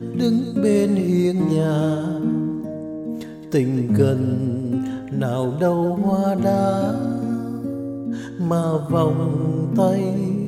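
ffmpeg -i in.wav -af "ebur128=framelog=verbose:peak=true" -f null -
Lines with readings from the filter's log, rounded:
Integrated loudness:
  I:         -21.0 LUFS
  Threshold: -31.1 LUFS
Loudness range:
  LRA:         1.9 LU
  Threshold: -41.5 LUFS
  LRA low:   -22.5 LUFS
  LRA high:  -20.5 LUFS
True peak:
  Peak:       -4.5 dBFS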